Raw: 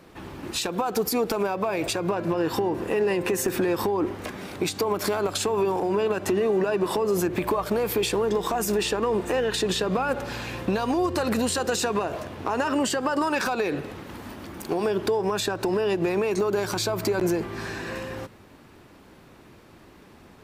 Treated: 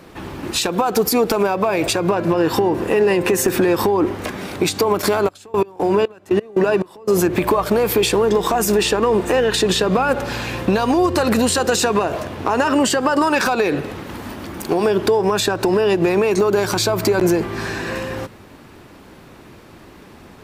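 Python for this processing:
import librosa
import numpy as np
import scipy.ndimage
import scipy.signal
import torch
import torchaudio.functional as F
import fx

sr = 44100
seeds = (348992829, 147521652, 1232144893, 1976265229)

y = fx.step_gate(x, sr, bpm=176, pattern='..x..xxx.', floor_db=-24.0, edge_ms=4.5, at=(5.01, 7.1), fade=0.02)
y = y * 10.0 ** (8.0 / 20.0)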